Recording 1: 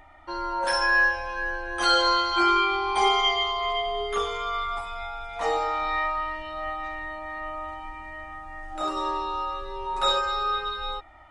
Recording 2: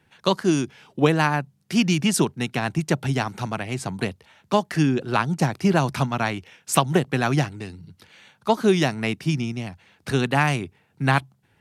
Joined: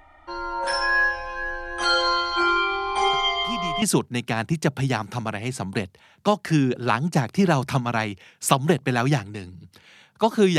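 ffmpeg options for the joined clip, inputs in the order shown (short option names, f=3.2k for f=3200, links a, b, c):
-filter_complex "[1:a]asplit=2[a][b];[0:a]apad=whole_dur=10.58,atrim=end=10.58,atrim=end=3.822[c];[b]atrim=start=2.078:end=8.84[d];[a]atrim=start=1.39:end=2.08,asetpts=PTS-STARTPTS,volume=-13dB,afade=t=in:d=0.004:c=hsin,afade=t=out:st=0.686:d=0.004:c=hsin,adelay=138033S[e];[c][d]acrossfade=d=0.004:c1=hsin:c2=hsin[f];[f][e]amix=inputs=2:normalize=0"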